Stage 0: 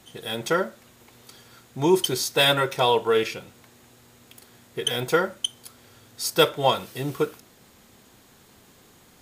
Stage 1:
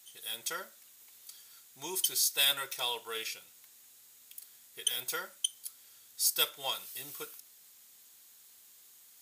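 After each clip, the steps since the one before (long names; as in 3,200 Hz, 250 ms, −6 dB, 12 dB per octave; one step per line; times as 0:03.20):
first-order pre-emphasis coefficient 0.97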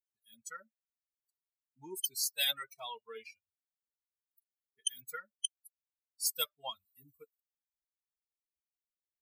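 spectral dynamics exaggerated over time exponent 3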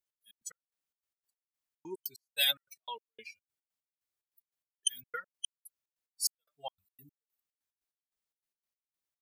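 gate pattern "x.x.x..x" 146 BPM −60 dB
level +3.5 dB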